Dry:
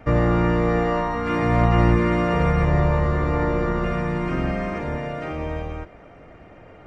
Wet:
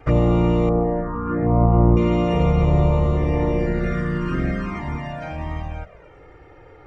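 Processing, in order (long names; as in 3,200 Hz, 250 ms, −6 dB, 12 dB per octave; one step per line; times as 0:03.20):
0:00.69–0:01.97: low-pass filter 1,300 Hz 24 dB per octave
flanger swept by the level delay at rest 2.6 ms, full sweep at −16.5 dBFS
level +2.5 dB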